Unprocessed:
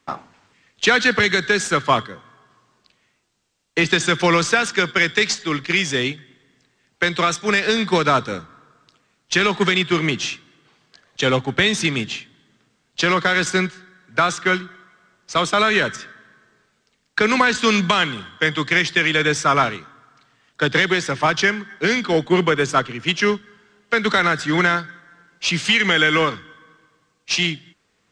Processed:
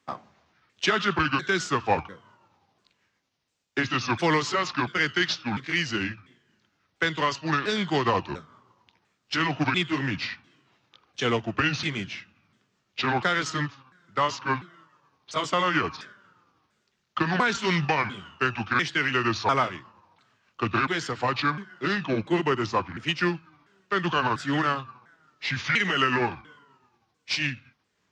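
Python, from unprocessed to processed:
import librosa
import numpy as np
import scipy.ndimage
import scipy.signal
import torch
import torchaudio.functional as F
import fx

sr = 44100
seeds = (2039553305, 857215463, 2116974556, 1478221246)

y = fx.pitch_ramps(x, sr, semitones=-6.5, every_ms=696)
y = scipy.signal.sosfilt(scipy.signal.butter(2, 53.0, 'highpass', fs=sr, output='sos'), y)
y = fx.doppler_dist(y, sr, depth_ms=0.11)
y = y * 10.0 ** (-6.0 / 20.0)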